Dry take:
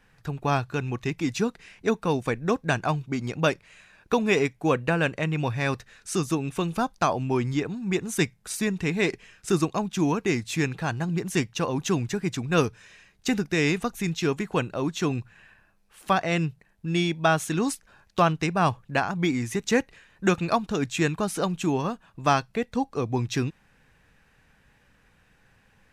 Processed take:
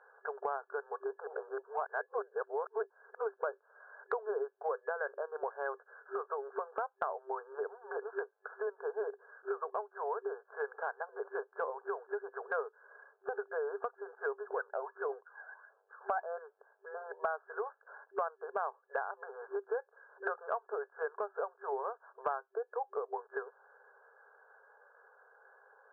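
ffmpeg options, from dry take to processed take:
-filter_complex "[0:a]asettb=1/sr,asplit=3[a][b][c];[a]atrim=end=14.464[d];[b]atrim=start=14.46:end=16.24,asetpts=PTS-STARTPTS,afade=t=in:d=0.004:c=qsin,afade=t=out:st=1.776:d=0.004:c=qsin,aphaser=in_gain=1:out_gain=1:delay=1.5:decay=0.58:speed=1.5:type=triangular[e];[c]atrim=start=16.236[f];[d][e]acrossfade=d=0.004:c1=hsin:c2=qsin[g];[g][f]acrossfade=d=0.004:c1=qsin:c2=hsin,asplit=3[h][i][j];[h]atrim=end=1.272[k];[i]atrim=start=1.268:end=3.432,asetpts=PTS-STARTPTS,areverse[l];[j]atrim=start=3.428[m];[k][l]acrossfade=d=0.004:c1=hsin:c2=hsin[n];[n][m]acrossfade=d=0.004:c1=hsin:c2=hsin,afftfilt=real='re*between(b*sr/4096,390,1700)':imag='im*between(b*sr/4096,390,1700)':win_size=4096:overlap=0.75,acompressor=threshold=-41dB:ratio=4,volume=5dB"

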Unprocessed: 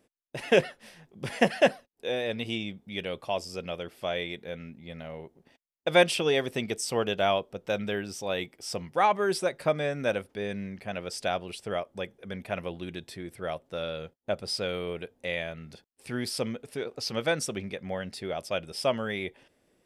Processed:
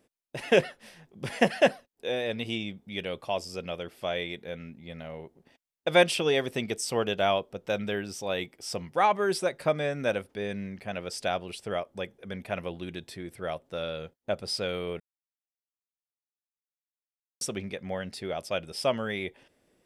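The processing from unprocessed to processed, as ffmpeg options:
-filter_complex "[0:a]asplit=3[a][b][c];[a]atrim=end=15,asetpts=PTS-STARTPTS,afade=t=out:st=14.996:d=0.004:c=hsin[d];[b]atrim=start=15:end=17.41,asetpts=PTS-STARTPTS,volume=0[e];[c]atrim=start=17.41,asetpts=PTS-STARTPTS,afade=t=in:d=0.004:c=hsin[f];[d][e][f]concat=n=3:v=0:a=1"

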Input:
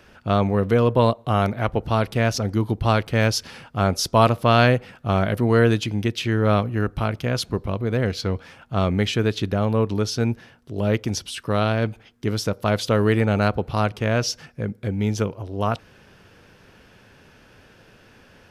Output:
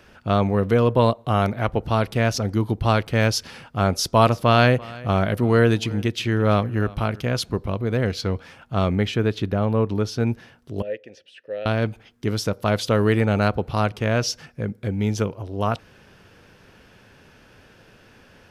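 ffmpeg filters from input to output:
-filter_complex "[0:a]asettb=1/sr,asplit=3[a][b][c];[a]atrim=end=3.984[d];[b]atrim=start=3.98:end=7.33,asetpts=PTS-STARTPTS,afade=t=in:d=0.004:c=qsin,afade=t=out:st=3.346:d=0.004:c=qsin,aecho=1:1:338:0.0891,atrim=end_sample=147735[e];[c]atrim=start=7.326[f];[d][e]acrossfade=d=0.004:c1=hsin:c2=qsin[g];[g][f]acrossfade=d=0.004:c1=qsin:c2=hsin,asettb=1/sr,asplit=3[h][i][j];[h]atrim=end=8.954[k];[i]atrim=start=8.95:end=10.27,asetpts=PTS-STARTPTS,afade=t=in:d=0.004:c=qsin,afade=t=out:st=1.316:d=0.004:c=qsin,equalizer=f=7.7k:w=0.4:g=-7[l];[j]atrim=start=10.266[m];[k][l]acrossfade=d=0.004:c1=hsin:c2=qsin[n];[n][m]acrossfade=d=0.004:c1=qsin:c2=hsin,asettb=1/sr,asplit=3[o][p][q];[o]atrim=end=10.824[r];[p]atrim=start=10.82:end=11.66,asetpts=PTS-STARTPTS,afade=t=in:d=0.004:c=qsin,afade=t=out:st=0.836:d=0.004:c=qsin,asplit=3[s][t][u];[s]bandpass=f=530:t=q:w=8,volume=0dB[v];[t]bandpass=f=1.84k:t=q:w=8,volume=-6dB[w];[u]bandpass=f=2.48k:t=q:w=8,volume=-9dB[x];[v][w][x]amix=inputs=3:normalize=0[y];[q]atrim=start=11.656[z];[r][y]acrossfade=d=0.004:c1=hsin:c2=qsin[aa];[aa][z]acrossfade=d=0.004:c1=qsin:c2=hsin"

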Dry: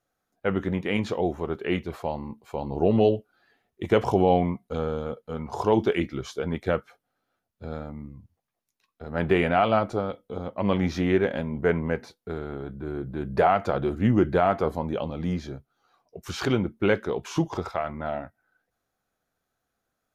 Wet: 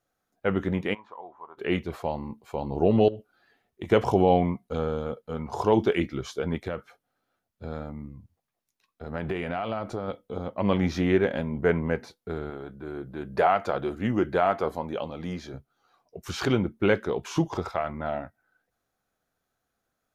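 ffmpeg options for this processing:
-filter_complex "[0:a]asplit=3[a][b][c];[a]afade=t=out:st=0.93:d=0.02[d];[b]bandpass=f=1k:t=q:w=6.7,afade=t=in:st=0.93:d=0.02,afade=t=out:st=1.57:d=0.02[e];[c]afade=t=in:st=1.57:d=0.02[f];[d][e][f]amix=inputs=3:normalize=0,asettb=1/sr,asplit=3[g][h][i];[g]atrim=end=3.084[j];[h]atrim=start=3.08:end=3.89,asetpts=PTS-STARTPTS,afade=t=in:d=0.004:c=qsin,afade=t=out:st=0.806:d=0.004:c=qsin,acompressor=threshold=-29dB:ratio=12:attack=3.2:release=140:knee=1:detection=peak[k];[i]atrim=start=3.886[l];[j][k]acrossfade=d=0.004:c1=hsin:c2=qsin[m];[m][l]acrossfade=d=0.004:c1=qsin:c2=hsin,asettb=1/sr,asplit=3[n][o][p];[n]atrim=end=6.644[q];[o]atrim=start=6.64:end=10.08,asetpts=PTS-STARTPTS,afade=t=in:d=0.004:c=qsin,afade=t=out:st=3.436:d=0.004:c=qsin,acompressor=threshold=-26dB:ratio=6:attack=3.2:release=140:knee=1:detection=peak[r];[p]atrim=start=10.076[s];[q][r]acrossfade=d=0.004:c1=hsin:c2=qsin[t];[t][s]acrossfade=d=0.004:c1=qsin:c2=hsin,asettb=1/sr,asplit=3[u][v][w];[u]atrim=end=12.504[x];[v]atrim=start=12.5:end=15.54,asetpts=PTS-STARTPTS,afade=t=in:d=0.004:c=qsin,afade=t=out:st=3.036:d=0.004:c=qsin,lowshelf=f=260:g=-9.5[y];[w]atrim=start=15.536[z];[x][y]acrossfade=d=0.004:c1=hsin:c2=qsin[aa];[aa][z]acrossfade=d=0.004:c1=qsin:c2=hsin"

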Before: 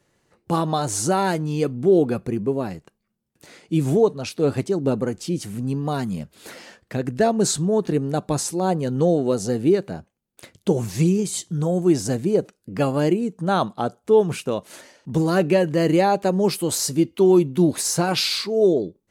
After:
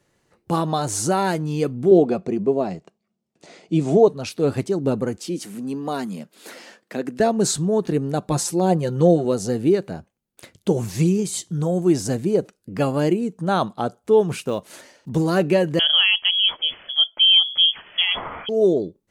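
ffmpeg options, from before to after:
-filter_complex "[0:a]asettb=1/sr,asplit=3[a][b][c];[a]atrim=end=1.914[d];[b]atrim=start=1.91:end=4.08,asetpts=PTS-STARTPTS,afade=t=in:d=0.004:c=qsin,afade=t=out:st=2.166:d=0.004:c=qsin,highpass=110,equalizer=f=120:t=q:w=4:g=-8,equalizer=f=180:t=q:w=4:g=5,equalizer=f=390:t=q:w=4:g=4,equalizer=f=670:t=q:w=4:g=9,equalizer=f=1.6k:t=q:w=4:g=-5,lowpass=f=7.8k:w=0.5412,lowpass=f=7.8k:w=1.3066[e];[c]atrim=start=4.076[f];[d][e]acrossfade=d=0.004:c1=hsin:c2=qsin[g];[g][f]acrossfade=d=0.004:c1=qsin:c2=hsin,asettb=1/sr,asplit=3[h][i][j];[h]atrim=end=5.174[k];[i]atrim=start=5.17:end=7.2,asetpts=PTS-STARTPTS,afade=t=in:d=0.004:c=qsin,afade=t=out:st=2.026:d=0.004:c=qsin,highpass=f=200:w=0.5412,highpass=f=200:w=1.3066[l];[j]atrim=start=7.196[m];[k][l]acrossfade=d=0.004:c1=hsin:c2=qsin[n];[n][m]acrossfade=d=0.004:c1=qsin:c2=hsin,asettb=1/sr,asplit=3[o][p][q];[o]atrim=end=8.314[r];[p]atrim=start=8.31:end=9.25,asetpts=PTS-STARTPTS,afade=t=in:d=0.004:c=qsin,afade=t=out:st=0.936:d=0.004:c=qsin,aecho=1:1:5.7:0.61,atrim=end_sample=41454[s];[q]atrim=start=9.246[t];[r][s]acrossfade=d=0.004:c1=hsin:c2=qsin[u];[u][t]acrossfade=d=0.004:c1=qsin:c2=hsin,asettb=1/sr,asplit=3[v][w][x];[v]atrim=end=14.414[y];[w]atrim=start=14.41:end=15.09,asetpts=PTS-STARTPTS,afade=t=in:d=0.004:c=qsin,afade=t=out:st=0.676:d=0.004:c=qsin,acrusher=bits=9:mode=log:mix=0:aa=0.000001[z];[x]atrim=start=15.086[aa];[y][z]acrossfade=d=0.004:c1=hsin:c2=qsin[ab];[ab][aa]acrossfade=d=0.004:c1=qsin:c2=hsin,asettb=1/sr,asplit=3[ac][ad][ae];[ac]atrim=end=15.794[af];[ad]atrim=start=15.79:end=18.49,asetpts=PTS-STARTPTS,afade=t=in:d=0.004:c=qsin,afade=t=out:st=2.696:d=0.004:c=qsin,lowpass=f=3k:t=q:w=0.5098,lowpass=f=3k:t=q:w=0.6013,lowpass=f=3k:t=q:w=0.9,lowpass=f=3k:t=q:w=2.563,afreqshift=-3500[ag];[ae]atrim=start=18.486[ah];[af][ag]acrossfade=d=0.004:c1=hsin:c2=qsin[ai];[ai][ah]acrossfade=d=0.004:c1=qsin:c2=hsin"

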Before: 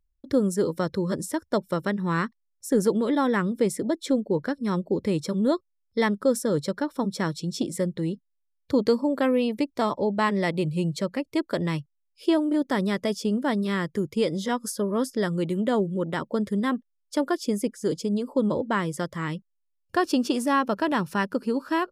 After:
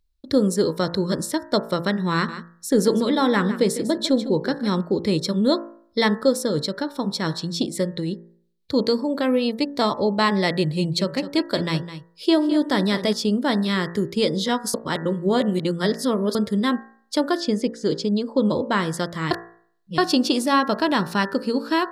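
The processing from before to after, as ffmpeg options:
-filter_complex "[0:a]asettb=1/sr,asplit=3[a][b][c];[a]atrim=end=2.134[d];[b]atrim=start=2.13:end=4.81,asetpts=PTS-STARTPTS,afade=t=in:d=0.004:c=qsin,afade=t=out:st=2.676:d=0.004:c=qsin,aecho=1:1:152:0.237,atrim=end_sample=118188[e];[c]atrim=start=4.806[f];[d][e]acrossfade=d=0.004:c1=hsin:c2=qsin[g];[g][f]acrossfade=d=0.004:c1=qsin:c2=hsin,asettb=1/sr,asplit=3[h][i][j];[h]atrim=end=6.274[k];[i]atrim=start=6.27:end=9.62,asetpts=PTS-STARTPTS,afade=t=in:d=0.004:c=qsin,afade=t=out:st=3.346:d=0.004:c=qsin,tremolo=f=5.9:d=0.37[l];[j]atrim=start=9.616[m];[k][l]acrossfade=d=0.004:c1=hsin:c2=qsin[n];[n][m]acrossfade=d=0.004:c1=qsin:c2=hsin,asettb=1/sr,asplit=3[o][p][q];[o]atrim=end=10.504[r];[p]atrim=start=10.5:end=13.13,asetpts=PTS-STARTPTS,afade=t=in:d=0.004:c=qsin,afade=t=out:st=2.626:d=0.004:c=qsin,aecho=1:1:209:0.237,atrim=end_sample=115983[s];[q]atrim=start=13.126[t];[r][s]acrossfade=d=0.004:c1=hsin:c2=qsin[u];[u][t]acrossfade=d=0.004:c1=qsin:c2=hsin,asettb=1/sr,asplit=3[v][w][x];[v]atrim=end=17.404[y];[w]atrim=start=17.4:end=18.46,asetpts=PTS-STARTPTS,afade=t=in:d=0.004:c=qsin,afade=t=out:st=1.056:d=0.004:c=qsin,lowpass=5.7k[z];[x]atrim=start=18.456[aa];[y][z]acrossfade=d=0.004:c1=hsin:c2=qsin[ab];[ab][aa]acrossfade=d=0.004:c1=qsin:c2=hsin,asplit=5[ac][ad][ae][af][ag];[ac]atrim=end=14.742[ah];[ad]atrim=start=14.738:end=16.352,asetpts=PTS-STARTPTS,areverse[ai];[ae]atrim=start=16.348:end=19.312[aj];[af]atrim=start=19.308:end=19.982,asetpts=PTS-STARTPTS,areverse[ak];[ag]atrim=start=19.978[al];[ah][ai]acrossfade=d=0.004:c1=hsin:c2=hsin[am];[am][aj]acrossfade=d=0.004:c1=hsin:c2=hsin[an];[an][ak]acrossfade=d=0.004:c1=hsin:c2=hsin[ao];[ao][al]acrossfade=d=0.004:c1=hsin:c2=hsin,equalizer=f=4.1k:t=o:w=0.54:g=11,bandreject=f=56.87:t=h:w=4,bandreject=f=113.74:t=h:w=4,bandreject=f=170.61:t=h:w=4,bandreject=f=227.48:t=h:w=4,bandreject=f=284.35:t=h:w=4,bandreject=f=341.22:t=h:w=4,bandreject=f=398.09:t=h:w=4,bandreject=f=454.96:t=h:w=4,bandreject=f=511.83:t=h:w=4,bandreject=f=568.7:t=h:w=4,bandreject=f=625.57:t=h:w=4,bandreject=f=682.44:t=h:w=4,bandreject=f=739.31:t=h:w=4,bandreject=f=796.18:t=h:w=4,bandreject=f=853.05:t=h:w=4,bandreject=f=909.92:t=h:w=4,bandreject=f=966.79:t=h:w=4,bandreject=f=1.02366k:t=h:w=4,bandreject=f=1.08053k:t=h:w=4,bandreject=f=1.1374k:t=h:w=4,bandreject=f=1.19427k:t=h:w=4,bandreject=f=1.25114k:t=h:w=4,bandreject=f=1.30801k:t=h:w=4,bandreject=f=1.36488k:t=h:w=4,bandreject=f=1.42175k:t=h:w=4,bandreject=f=1.47862k:t=h:w=4,bandreject=f=1.53549k:t=h:w=4,bandreject=f=1.59236k:t=h:w=4,bandreject=f=1.64923k:t=h:w=4,bandreject=f=1.7061k:t=h:w=4,bandreject=f=1.76297k:t=h:w=4,bandreject=f=1.81984k:t=h:w=4,bandreject=f=1.87671k:t=h:w=4,bandreject=f=1.93358k:t=h:w=4,volume=4dB"

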